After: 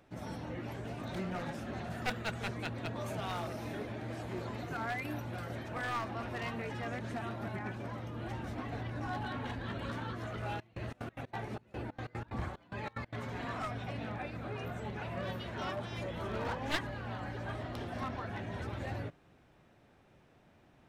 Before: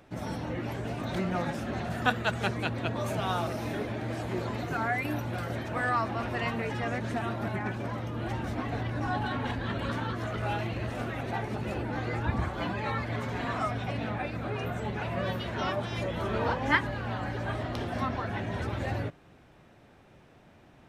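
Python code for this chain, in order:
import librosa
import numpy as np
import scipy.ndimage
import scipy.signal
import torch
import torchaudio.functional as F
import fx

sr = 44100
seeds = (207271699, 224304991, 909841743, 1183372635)

y = np.minimum(x, 2.0 * 10.0 ** (-24.5 / 20.0) - x)
y = fx.step_gate(y, sr, bpm=184, pattern='xx.x.x.xxx..', floor_db=-24.0, edge_ms=4.5, at=(10.47, 13.18), fade=0.02)
y = y * 10.0 ** (-7.0 / 20.0)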